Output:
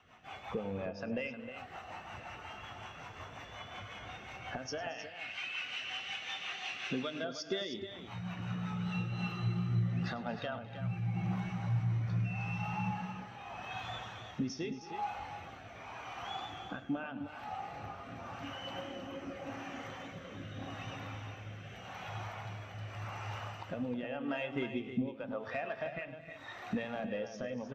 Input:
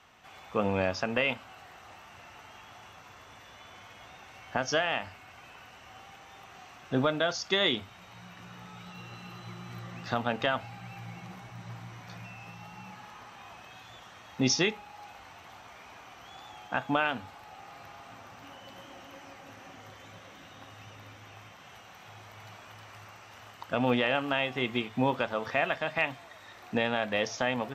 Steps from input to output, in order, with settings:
0:04.98–0:07.19: meter weighting curve D
downward compressor 12 to 1, threshold −42 dBFS, peak gain reduction 22.5 dB
rotating-speaker cabinet horn 5.5 Hz, later 0.85 Hz, at 0:08.53
soft clipping −38.5 dBFS, distortion −19 dB
multi-tap delay 102/225/263/312 ms −12/−13/−15/−7 dB
every bin expanded away from the loudest bin 1.5 to 1
level +12.5 dB

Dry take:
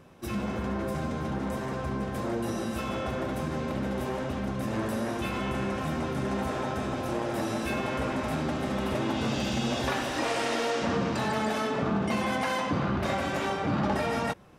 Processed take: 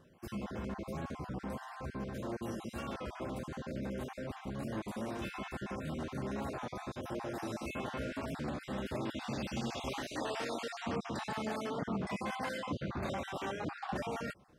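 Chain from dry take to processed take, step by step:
time-frequency cells dropped at random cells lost 34%
wow of a warped record 33 1/3 rpm, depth 100 cents
level −8 dB

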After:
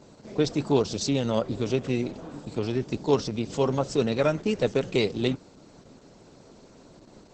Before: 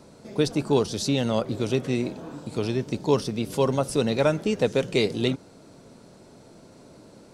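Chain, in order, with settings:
harmonic generator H 3 −31 dB, 4 −44 dB, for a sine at −6.5 dBFS
Opus 10 kbit/s 48,000 Hz

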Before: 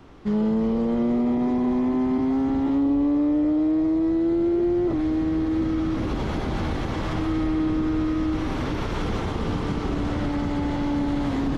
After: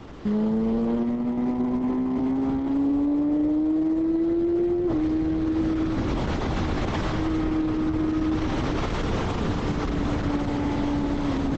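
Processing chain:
brickwall limiter −24.5 dBFS, peak gain reduction 9 dB
repeating echo 450 ms, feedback 20%, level −21.5 dB
level +7 dB
Opus 10 kbit/s 48,000 Hz

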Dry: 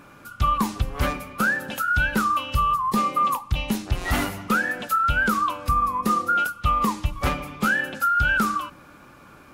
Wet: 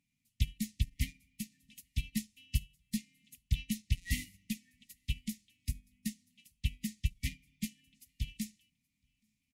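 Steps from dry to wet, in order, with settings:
linear-phase brick-wall band-stop 280–1,800 Hz
parametric band 7,400 Hz +7 dB 1.7 octaves
on a send: single-tap delay 825 ms −21 dB
on the sum: expander for the loud parts 2.5 to 1, over −35 dBFS
level −5.5 dB

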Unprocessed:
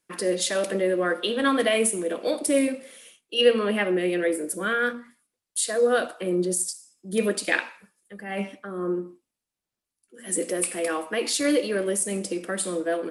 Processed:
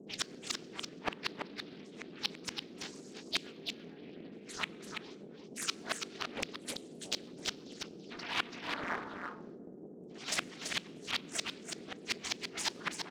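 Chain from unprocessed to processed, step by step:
Butterworth low-pass 5,700 Hz 48 dB per octave
gate on every frequency bin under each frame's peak −25 dB weak
spectral tilt +2 dB per octave
phase shifter 0.92 Hz, delay 1.6 ms, feedback 61%
gate with flip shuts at −32 dBFS, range −35 dB
noise in a band 160–450 Hz −61 dBFS
in parallel at −3.5 dB: dead-zone distortion −45 dBFS
on the sum: single-tap delay 334 ms −6 dB
on a send at −19 dB: convolution reverb RT60 1.4 s, pre-delay 6 ms
on the sum: highs frequency-modulated by the lows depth 0.82 ms
level +10 dB

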